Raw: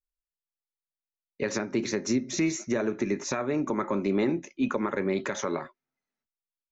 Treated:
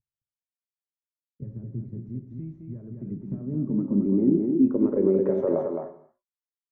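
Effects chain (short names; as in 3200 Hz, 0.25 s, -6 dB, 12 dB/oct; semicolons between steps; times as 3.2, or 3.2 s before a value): CVSD 64 kbps; 2–3.12 tilt shelf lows -5.5 dB, about 750 Hz; limiter -19.5 dBFS, peak gain reduction 3 dB; echo 0.215 s -5.5 dB; low-pass sweep 120 Hz -> 900 Hz, 2.73–6.43; non-linear reverb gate 0.31 s falling, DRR 9.5 dB; gain +2.5 dB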